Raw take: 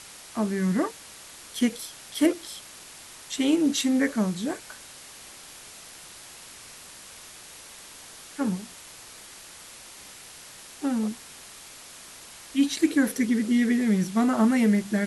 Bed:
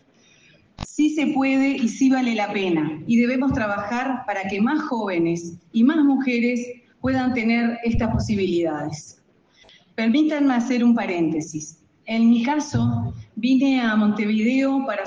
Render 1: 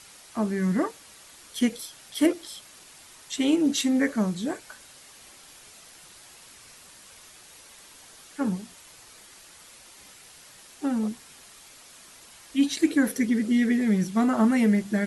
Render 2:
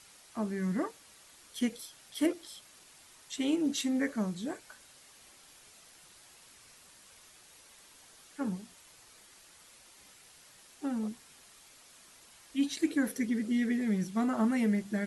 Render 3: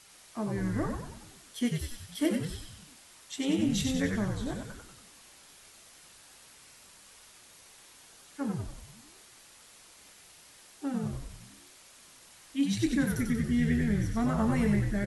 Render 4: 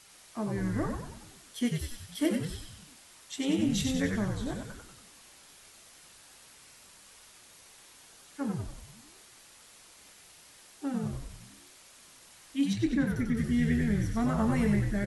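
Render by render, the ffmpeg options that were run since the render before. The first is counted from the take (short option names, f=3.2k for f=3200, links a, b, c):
-af "afftdn=nr=6:nf=-46"
-af "volume=-7.5dB"
-filter_complex "[0:a]asplit=2[a][b];[b]adelay=25,volume=-12.5dB[c];[a][c]amix=inputs=2:normalize=0,asplit=8[d][e][f][g][h][i][j][k];[e]adelay=94,afreqshift=-83,volume=-4dB[l];[f]adelay=188,afreqshift=-166,volume=-9.2dB[m];[g]adelay=282,afreqshift=-249,volume=-14.4dB[n];[h]adelay=376,afreqshift=-332,volume=-19.6dB[o];[i]adelay=470,afreqshift=-415,volume=-24.8dB[p];[j]adelay=564,afreqshift=-498,volume=-30dB[q];[k]adelay=658,afreqshift=-581,volume=-35.2dB[r];[d][l][m][n][o][p][q][r]amix=inputs=8:normalize=0"
-filter_complex "[0:a]asettb=1/sr,asplit=3[a][b][c];[a]atrim=end=12.734[d];[b]atrim=start=12.73:end=13.37,asetpts=PTS-STARTPTS,afade=t=in:d=0.004:c=qsin,afade=t=out:st=0.636:d=0.004:c=qsin,lowpass=f=2.4k:p=1[e];[c]atrim=start=13.366[f];[d][e]acrossfade=d=0.004:c1=hsin:c2=qsin[g];[g][f]acrossfade=d=0.004:c1=qsin:c2=hsin"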